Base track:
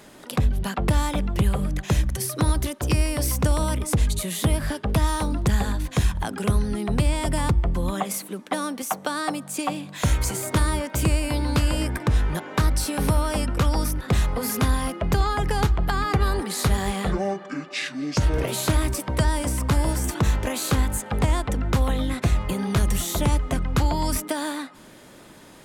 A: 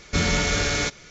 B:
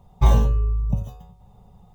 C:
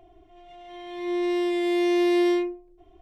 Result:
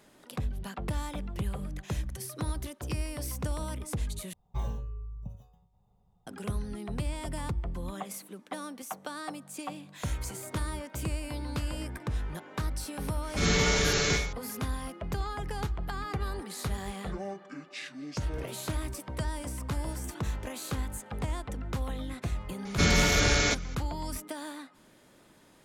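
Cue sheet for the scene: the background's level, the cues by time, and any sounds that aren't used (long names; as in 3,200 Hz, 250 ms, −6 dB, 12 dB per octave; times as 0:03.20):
base track −12 dB
0:04.33: overwrite with B −18 dB
0:13.23: mix in A −8.5 dB + four-comb reverb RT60 0.48 s, DRR −5 dB
0:22.65: mix in A −1.5 dB
not used: C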